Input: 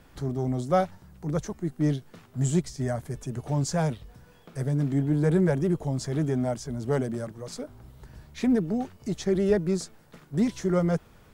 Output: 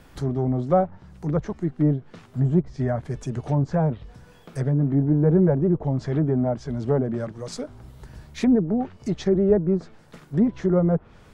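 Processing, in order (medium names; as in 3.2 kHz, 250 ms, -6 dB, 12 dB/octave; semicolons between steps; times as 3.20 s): low-pass that closes with the level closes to 910 Hz, closed at -21.5 dBFS; trim +4.5 dB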